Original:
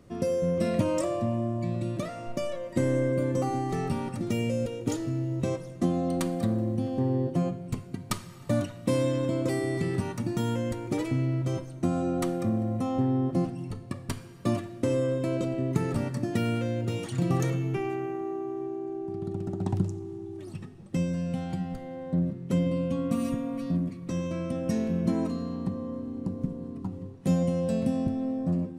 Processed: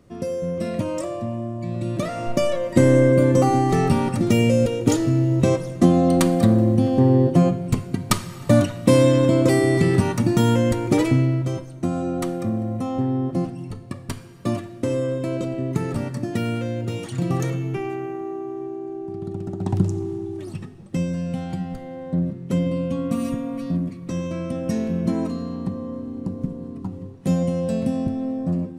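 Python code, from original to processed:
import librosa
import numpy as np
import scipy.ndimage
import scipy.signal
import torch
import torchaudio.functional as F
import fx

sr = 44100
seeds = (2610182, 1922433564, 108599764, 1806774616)

y = fx.gain(x, sr, db=fx.line((1.59, 0.5), (2.23, 11.0), (11.07, 11.0), (11.57, 3.0), (19.59, 3.0), (20.0, 11.0), (20.9, 4.0)))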